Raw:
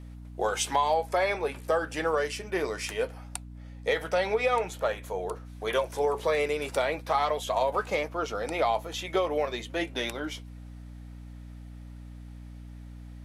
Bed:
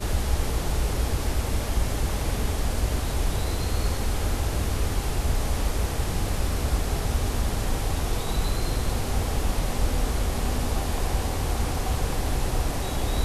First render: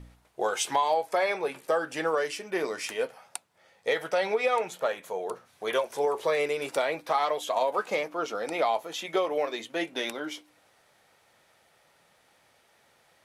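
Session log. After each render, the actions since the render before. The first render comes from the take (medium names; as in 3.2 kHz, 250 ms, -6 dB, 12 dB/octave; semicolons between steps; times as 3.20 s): de-hum 60 Hz, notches 5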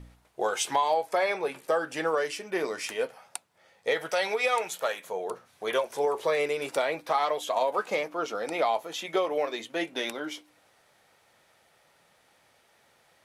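4.09–5.04 s: tilt EQ +2.5 dB/octave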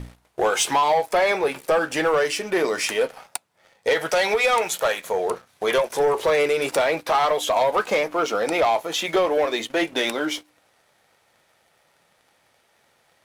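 in parallel at -3 dB: compression, threshold -36 dBFS, peak gain reduction 15 dB; on the sum: waveshaping leveller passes 2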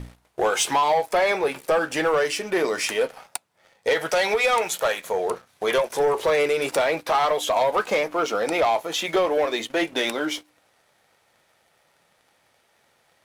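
trim -1 dB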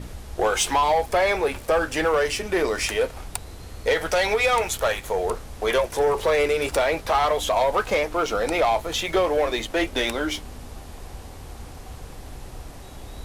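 add bed -13 dB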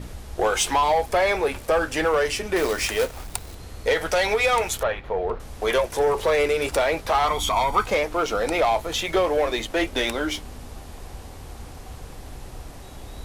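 2.56–3.55 s: companded quantiser 4-bit; 4.83–5.40 s: distance through air 360 m; 7.27–7.86 s: comb 0.9 ms, depth 70%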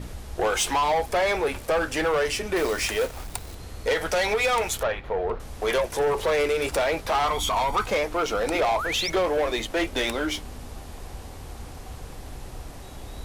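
8.54–9.10 s: painted sound rise 280–6100 Hz -29 dBFS; saturation -17.5 dBFS, distortion -17 dB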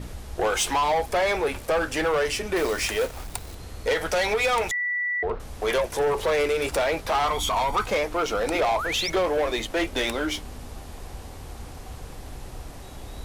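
4.71–5.23 s: bleep 1.96 kHz -23.5 dBFS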